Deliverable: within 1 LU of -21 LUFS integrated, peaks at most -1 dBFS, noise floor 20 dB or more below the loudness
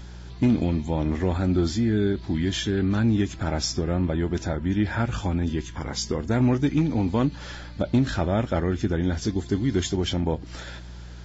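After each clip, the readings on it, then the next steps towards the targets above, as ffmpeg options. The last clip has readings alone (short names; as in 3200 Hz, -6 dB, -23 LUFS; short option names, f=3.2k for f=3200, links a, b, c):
hum 60 Hz; harmonics up to 180 Hz; hum level -38 dBFS; loudness -25.0 LUFS; peak -13.0 dBFS; loudness target -21.0 LUFS
-> -af "bandreject=f=60:t=h:w=4,bandreject=f=120:t=h:w=4,bandreject=f=180:t=h:w=4"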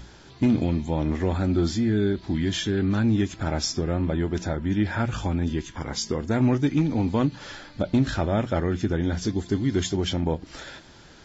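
hum none; loudness -25.0 LUFS; peak -12.0 dBFS; loudness target -21.0 LUFS
-> -af "volume=4dB"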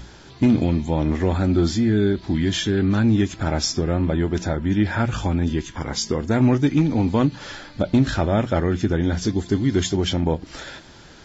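loudness -21.0 LUFS; peak -8.0 dBFS; noise floor -45 dBFS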